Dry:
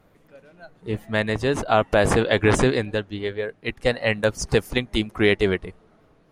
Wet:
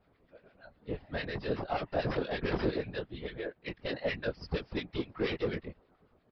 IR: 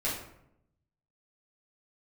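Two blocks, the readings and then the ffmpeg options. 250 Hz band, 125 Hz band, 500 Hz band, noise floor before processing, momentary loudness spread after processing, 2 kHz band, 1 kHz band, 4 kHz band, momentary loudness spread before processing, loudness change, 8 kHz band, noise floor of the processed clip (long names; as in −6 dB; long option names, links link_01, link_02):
−12.5 dB, −13.0 dB, −13.5 dB, −58 dBFS, 9 LU, −15.0 dB, −13.5 dB, −13.5 dB, 11 LU, −13.5 dB, below −35 dB, −70 dBFS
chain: -filter_complex "[0:a]aresample=11025,asoftclip=type=tanh:threshold=-16.5dB,aresample=44100,asplit=2[link_01][link_02];[link_02]adelay=21,volume=-4dB[link_03];[link_01][link_03]amix=inputs=2:normalize=0,afftfilt=real='hypot(re,im)*cos(2*PI*random(0))':imag='hypot(re,im)*sin(2*PI*random(1))':win_size=512:overlap=0.75,acrossover=split=1300[link_04][link_05];[link_04]aeval=exprs='val(0)*(1-0.7/2+0.7/2*cos(2*PI*8.6*n/s))':channel_layout=same[link_06];[link_05]aeval=exprs='val(0)*(1-0.7/2-0.7/2*cos(2*PI*8.6*n/s))':channel_layout=same[link_07];[link_06][link_07]amix=inputs=2:normalize=0,volume=-2dB"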